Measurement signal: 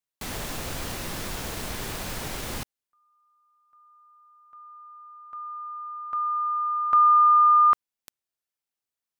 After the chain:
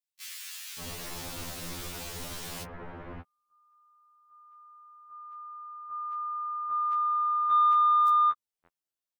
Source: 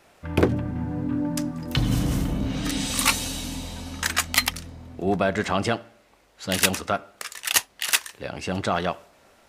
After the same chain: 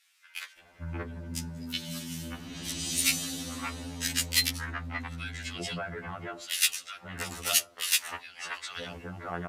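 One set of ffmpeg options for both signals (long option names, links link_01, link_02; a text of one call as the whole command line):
ffmpeg -i in.wav -filter_complex "[0:a]acrossover=split=1800[link_01][link_02];[link_01]adelay=580[link_03];[link_03][link_02]amix=inputs=2:normalize=0,aeval=exprs='0.596*(cos(1*acos(clip(val(0)/0.596,-1,1)))-cos(1*PI/2))+0.0133*(cos(7*acos(clip(val(0)/0.596,-1,1)))-cos(7*PI/2))':channel_layout=same,acrossover=split=1500[link_04][link_05];[link_04]acompressor=threshold=-36dB:ratio=4:attack=3.3:release=76:knee=6:detection=peak[link_06];[link_06][link_05]amix=inputs=2:normalize=0,afftfilt=real='re*2*eq(mod(b,4),0)':imag='im*2*eq(mod(b,4),0)':win_size=2048:overlap=0.75" out.wav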